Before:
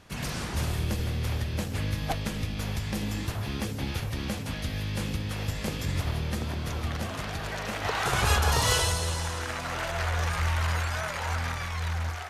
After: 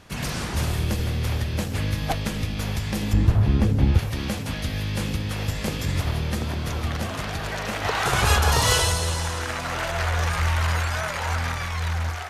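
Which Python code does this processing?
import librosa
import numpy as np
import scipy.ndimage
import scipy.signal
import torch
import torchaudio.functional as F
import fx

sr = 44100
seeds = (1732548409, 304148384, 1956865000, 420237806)

y = fx.tilt_eq(x, sr, slope=-3.0, at=(3.13, 3.99))
y = y * librosa.db_to_amplitude(4.5)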